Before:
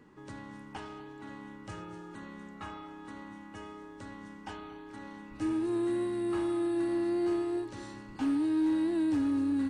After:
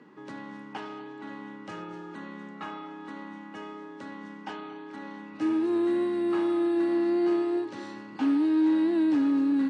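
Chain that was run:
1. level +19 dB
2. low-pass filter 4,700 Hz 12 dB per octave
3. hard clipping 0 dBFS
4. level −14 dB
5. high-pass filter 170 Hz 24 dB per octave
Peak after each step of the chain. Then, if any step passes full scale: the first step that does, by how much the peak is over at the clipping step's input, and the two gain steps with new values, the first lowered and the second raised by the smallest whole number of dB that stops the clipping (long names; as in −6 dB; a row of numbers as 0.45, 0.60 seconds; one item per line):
−4.5, −4.5, −4.5, −18.5, −17.0 dBFS
no step passes full scale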